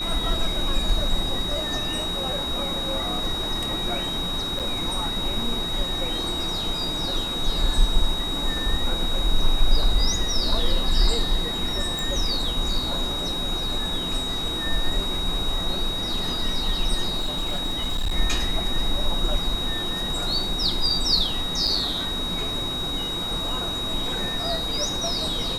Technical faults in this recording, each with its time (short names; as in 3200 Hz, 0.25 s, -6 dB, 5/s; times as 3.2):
tone 3800 Hz -27 dBFS
4.59–4.6 gap 7.7 ms
11.99 pop
17.17–18.16 clipped -20.5 dBFS
21.67 gap 4.7 ms